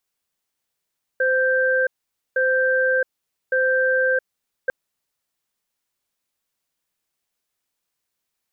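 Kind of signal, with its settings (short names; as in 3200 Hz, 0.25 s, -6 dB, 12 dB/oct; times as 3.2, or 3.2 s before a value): cadence 517 Hz, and 1570 Hz, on 0.67 s, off 0.49 s, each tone -19 dBFS 3.50 s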